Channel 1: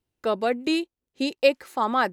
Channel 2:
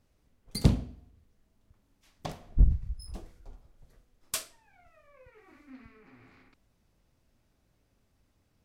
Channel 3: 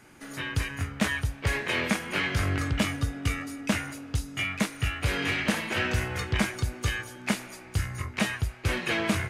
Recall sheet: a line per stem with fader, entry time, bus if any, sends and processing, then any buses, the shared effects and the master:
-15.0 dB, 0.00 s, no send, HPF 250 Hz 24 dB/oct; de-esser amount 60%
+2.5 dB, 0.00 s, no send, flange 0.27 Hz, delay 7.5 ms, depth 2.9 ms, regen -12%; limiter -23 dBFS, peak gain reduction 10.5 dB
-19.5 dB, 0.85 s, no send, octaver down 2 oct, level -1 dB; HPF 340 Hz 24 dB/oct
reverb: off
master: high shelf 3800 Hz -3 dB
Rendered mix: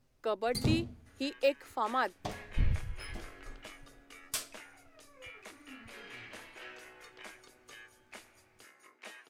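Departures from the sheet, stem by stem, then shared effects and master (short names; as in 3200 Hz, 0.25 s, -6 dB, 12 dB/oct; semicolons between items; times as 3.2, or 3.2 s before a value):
stem 1 -15.0 dB -> -8.5 dB; master: missing high shelf 3800 Hz -3 dB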